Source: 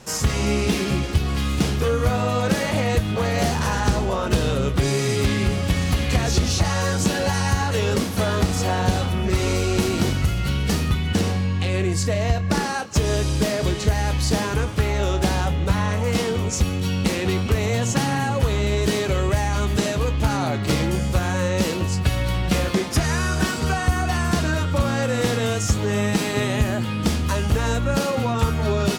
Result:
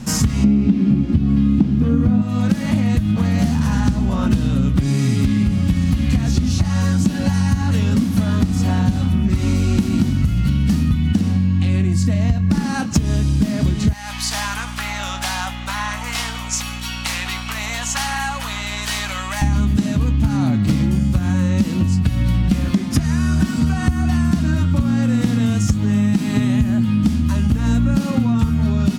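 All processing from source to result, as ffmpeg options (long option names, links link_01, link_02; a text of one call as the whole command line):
ffmpeg -i in.wav -filter_complex "[0:a]asettb=1/sr,asplit=3[link_01][link_02][link_03];[link_01]atrim=end=0.444[link_04];[link_02]atrim=start=0.44:end=2.22,asetpts=PTS-STARTPTS,afade=type=in:duration=0.004:curve=qsin,afade=type=out:start_time=1.776:duration=0.004:curve=qsin,acrossover=split=4600[link_05][link_06];[link_06]acompressor=threshold=-48dB:ratio=4:attack=1:release=60[link_07];[link_05][link_07]amix=inputs=2:normalize=0,equalizer=frequency=260:width_type=o:width=2.7:gain=12.5,asoftclip=type=hard:threshold=-2dB[link_08];[link_03]atrim=start=2.216[link_09];[link_04][link_08]acrossfade=duration=0.004:curve1=hsin:curve2=qsin[link_10];[link_10][link_09]acrossfade=duration=0.004:curve1=qsin:curve2=hsin,asettb=1/sr,asplit=3[link_11][link_12][link_13];[link_11]atrim=end=13.934[link_14];[link_12]atrim=start=13.93:end=19.42,asetpts=PTS-STARTPTS,afade=type=in:duration=0.004:curve=qsin,afade=type=out:start_time=5.486:duration=0.004:curve=qsin,highpass=frequency=790:width=0.5412,highpass=frequency=790:width=1.3066,aeval=exprs='val(0)+0.00631*(sin(2*PI*60*n/s)+sin(2*PI*2*60*n/s)/2+sin(2*PI*3*60*n/s)/3+sin(2*PI*4*60*n/s)/4+sin(2*PI*5*60*n/s)/5)':channel_layout=same[link_15];[link_13]atrim=start=19.416[link_16];[link_14][link_15]acrossfade=duration=0.004:curve1=hsin:curve2=qsin[link_17];[link_17][link_16]acrossfade=duration=0.004:curve1=qsin:curve2=hsin,lowshelf=frequency=320:width_type=q:width=3:gain=9,acompressor=threshold=-19dB:ratio=6,volume=5dB" out.wav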